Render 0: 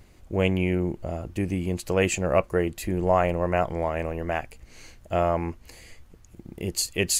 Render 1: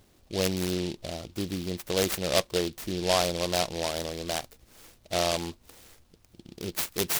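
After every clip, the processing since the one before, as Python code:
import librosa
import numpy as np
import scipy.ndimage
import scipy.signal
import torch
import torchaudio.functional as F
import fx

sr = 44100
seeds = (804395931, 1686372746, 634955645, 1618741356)

y = fx.low_shelf(x, sr, hz=100.0, db=-11.0)
y = fx.noise_mod_delay(y, sr, seeds[0], noise_hz=3600.0, depth_ms=0.14)
y = F.gain(torch.from_numpy(y), -3.0).numpy()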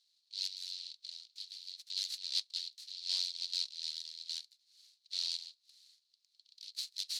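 y = fx.ladder_bandpass(x, sr, hz=4500.0, resonance_pct=75)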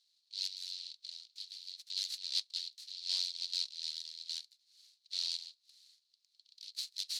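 y = x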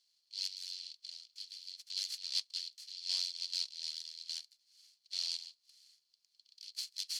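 y = fx.notch(x, sr, hz=3800.0, q=6.5)
y = F.gain(torch.from_numpy(y), 1.0).numpy()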